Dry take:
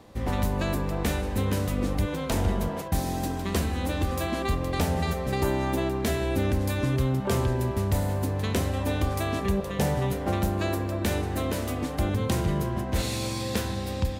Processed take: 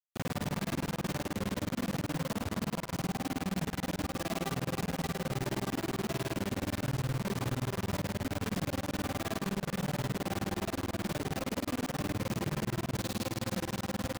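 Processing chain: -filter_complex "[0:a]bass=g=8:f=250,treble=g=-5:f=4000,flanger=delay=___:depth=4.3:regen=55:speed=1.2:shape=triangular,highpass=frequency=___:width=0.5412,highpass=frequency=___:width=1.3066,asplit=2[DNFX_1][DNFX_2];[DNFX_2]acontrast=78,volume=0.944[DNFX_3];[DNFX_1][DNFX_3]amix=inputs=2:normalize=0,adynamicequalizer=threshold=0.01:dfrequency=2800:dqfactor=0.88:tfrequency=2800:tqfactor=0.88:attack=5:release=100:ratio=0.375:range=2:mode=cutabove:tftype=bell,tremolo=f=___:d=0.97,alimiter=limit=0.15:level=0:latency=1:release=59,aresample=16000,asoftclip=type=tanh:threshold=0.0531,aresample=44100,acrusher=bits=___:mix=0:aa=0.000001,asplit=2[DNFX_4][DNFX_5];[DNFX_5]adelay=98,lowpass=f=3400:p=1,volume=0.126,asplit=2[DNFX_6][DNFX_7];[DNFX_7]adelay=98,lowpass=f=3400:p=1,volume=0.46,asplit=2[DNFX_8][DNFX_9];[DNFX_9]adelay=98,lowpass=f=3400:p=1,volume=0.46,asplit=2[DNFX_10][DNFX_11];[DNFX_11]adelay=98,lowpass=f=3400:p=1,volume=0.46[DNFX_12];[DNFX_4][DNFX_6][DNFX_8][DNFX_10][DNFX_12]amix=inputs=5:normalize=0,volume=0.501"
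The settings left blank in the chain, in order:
3.1, 120, 120, 19, 4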